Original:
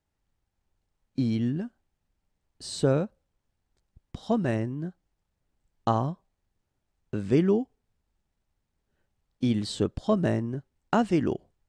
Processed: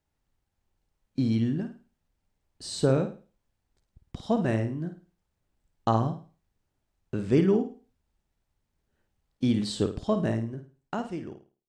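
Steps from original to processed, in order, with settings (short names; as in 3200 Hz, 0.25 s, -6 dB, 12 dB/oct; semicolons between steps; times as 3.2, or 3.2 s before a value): ending faded out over 1.96 s; flutter echo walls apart 9.1 m, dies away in 0.36 s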